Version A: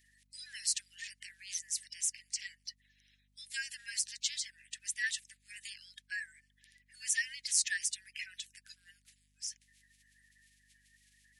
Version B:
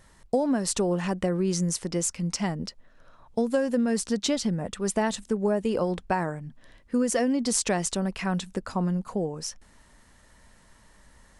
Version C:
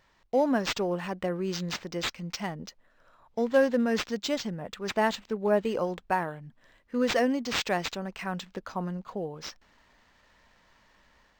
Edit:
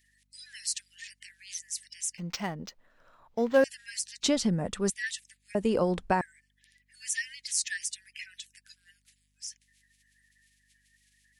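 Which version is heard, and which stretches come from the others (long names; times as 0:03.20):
A
0:02.18–0:03.64: punch in from C
0:04.23–0:04.90: punch in from B
0:05.55–0:06.21: punch in from B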